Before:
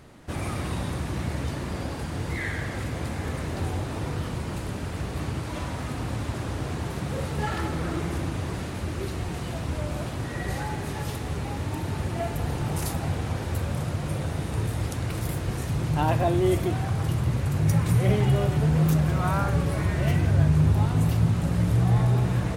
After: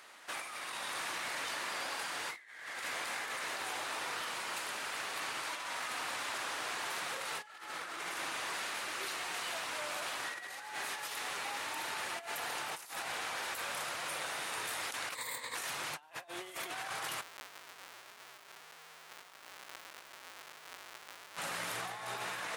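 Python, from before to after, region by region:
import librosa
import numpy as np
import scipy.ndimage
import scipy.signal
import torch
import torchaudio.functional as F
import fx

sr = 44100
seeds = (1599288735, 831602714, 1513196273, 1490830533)

y = fx.chain(x, sr, fx.ripple_eq(per_octave=1.0, db=15),
    fx.over_compress(threshold_db=-30.0, ratio=-1.0), at=(15.15, 15.55))
y = fx.chain(y, sr, fx.gaussian_blur(sigma=5.2),
    fx.schmitt(flips_db=-29.0), at=(17.22, 21.37))
y = scipy.signal.sosfilt(scipy.signal.butter(2, 1200.0, 'highpass', fs=sr, output='sos'), y)
y = fx.high_shelf(y, sr, hz=4600.0, db=-2.5)
y = fx.over_compress(y, sr, threshold_db=-43.0, ratio=-0.5)
y = F.gain(torch.from_numpy(y), 1.5).numpy()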